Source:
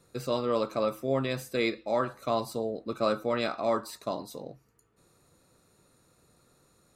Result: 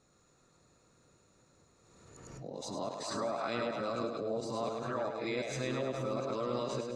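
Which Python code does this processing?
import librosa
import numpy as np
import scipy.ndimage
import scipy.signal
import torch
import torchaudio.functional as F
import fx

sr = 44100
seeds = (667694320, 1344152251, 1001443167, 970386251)

p1 = x[::-1].copy()
p2 = fx.over_compress(p1, sr, threshold_db=-32.0, ratio=-0.5)
p3 = p1 + (p2 * librosa.db_to_amplitude(-1.0))
p4 = fx.ladder_lowpass(p3, sr, hz=7500.0, resonance_pct=60)
p5 = fx.bass_treble(p4, sr, bass_db=0, treble_db=-8)
p6 = p5 + fx.echo_split(p5, sr, split_hz=640.0, low_ms=419, high_ms=104, feedback_pct=52, wet_db=-3.5, dry=0)
p7 = fx.pre_swell(p6, sr, db_per_s=34.0)
y = p7 * librosa.db_to_amplitude(-1.0)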